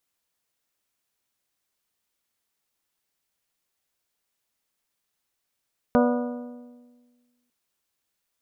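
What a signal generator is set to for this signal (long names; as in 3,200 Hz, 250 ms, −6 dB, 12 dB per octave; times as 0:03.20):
struck metal bell, lowest mode 244 Hz, modes 7, decay 1.58 s, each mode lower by 2.5 dB, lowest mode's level −17 dB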